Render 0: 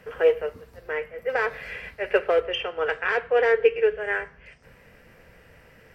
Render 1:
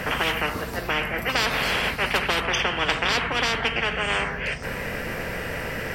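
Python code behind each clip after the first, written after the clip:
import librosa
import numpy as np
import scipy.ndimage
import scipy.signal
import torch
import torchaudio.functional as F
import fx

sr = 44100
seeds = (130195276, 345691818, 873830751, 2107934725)

y = fx.spectral_comp(x, sr, ratio=10.0)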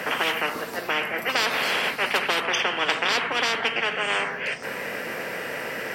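y = scipy.signal.sosfilt(scipy.signal.butter(2, 270.0, 'highpass', fs=sr, output='sos'), x)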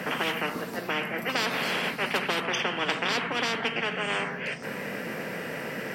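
y = fx.peak_eq(x, sr, hz=180.0, db=11.0, octaves=1.6)
y = y * 10.0 ** (-5.0 / 20.0)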